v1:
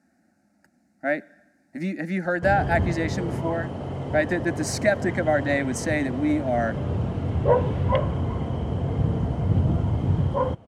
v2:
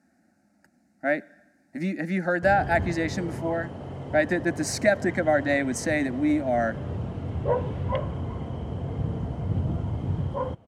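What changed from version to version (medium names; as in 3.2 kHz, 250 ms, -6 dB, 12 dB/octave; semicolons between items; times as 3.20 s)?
background -5.5 dB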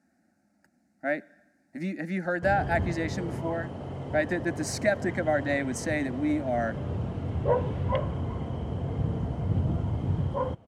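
speech -4.0 dB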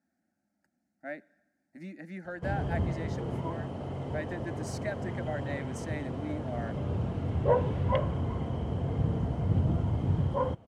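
speech -11.0 dB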